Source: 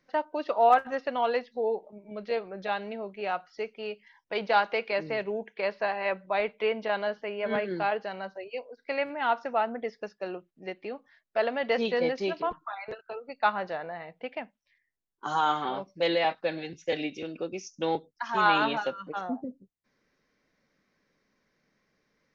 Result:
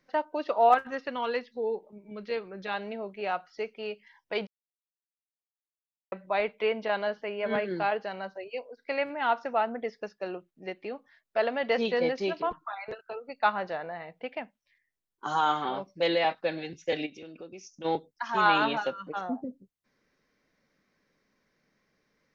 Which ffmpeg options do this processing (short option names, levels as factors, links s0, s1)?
-filter_complex "[0:a]asettb=1/sr,asplit=3[s0][s1][s2];[s0]atrim=end=0.744[s3];[s1]atrim=start=0.74:end=2.74,asetpts=PTS-STARTPTS,afade=t=in:d=0.004:c=qsin,afade=t=out:st=1.996:d=0.004:c=qsin,equalizer=f=680:t=o:w=0.54:g=-10.5[s4];[s2]atrim=start=2.736[s5];[s3][s4]acrossfade=d=0.004:c1=hsin:c2=qsin[s6];[s6][s5]acrossfade=d=0.004:c1=qsin:c2=hsin,asplit=3[s7][s8][s9];[s7]afade=t=out:st=17.05:d=0.02[s10];[s8]acompressor=threshold=0.00398:ratio=2:attack=3.2:release=140:knee=1:detection=peak,afade=t=in:st=17.05:d=0.02,afade=t=out:st=17.84:d=0.02[s11];[s9]afade=t=in:st=17.84:d=0.02[s12];[s10][s11][s12]amix=inputs=3:normalize=0,asplit=3[s13][s14][s15];[s13]atrim=end=4.47,asetpts=PTS-STARTPTS,afade=t=out:st=4.466:d=0.004:c=hsin[s16];[s14]atrim=start=4.47:end=6.12,asetpts=PTS-STARTPTS,volume=0[s17];[s15]atrim=start=6.12,asetpts=PTS-STARTPTS,afade=t=in:d=0.004:c=hsin[s18];[s16][s17][s18]concat=n=3:v=0:a=1"